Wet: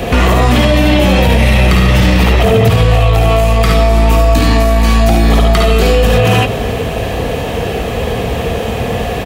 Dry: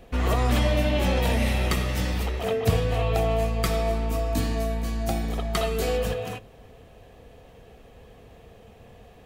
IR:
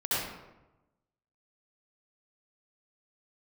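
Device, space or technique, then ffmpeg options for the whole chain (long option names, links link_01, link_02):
mastering chain: -filter_complex "[0:a]asettb=1/sr,asplit=3[link_01][link_02][link_03];[link_01]atrim=end=1.274[link_04];[link_02]atrim=start=1.27:end=3.23,asetpts=PTS-STARTPTS,afade=type=in:duration=0.004:curve=qsin,afade=type=out:start_time=1.956:duration=0.004:curve=qsin,bass=frequency=250:gain=9,treble=frequency=4000:gain=-2[link_05];[link_03]atrim=start=3.226[link_06];[link_04][link_05]acrossfade=duration=0.004:curve1=hsin:curve2=qsin[link_07];[link_07][link_06]acrossfade=duration=0.004:curve1=qsin:curve2=hsin,highpass=50,equalizer=frequency=2700:width_type=o:width=0.77:gain=2,aecho=1:1:53|70:0.501|0.562,acrossover=split=400|4900[link_08][link_09][link_10];[link_08]acompressor=threshold=-30dB:ratio=4[link_11];[link_09]acompressor=threshold=-35dB:ratio=4[link_12];[link_10]acompressor=threshold=-53dB:ratio=4[link_13];[link_11][link_12][link_13]amix=inputs=3:normalize=0,acompressor=threshold=-32dB:ratio=2.5,asoftclip=type=tanh:threshold=-24.5dB,alimiter=level_in=32.5dB:limit=-1dB:release=50:level=0:latency=1,volume=-1dB"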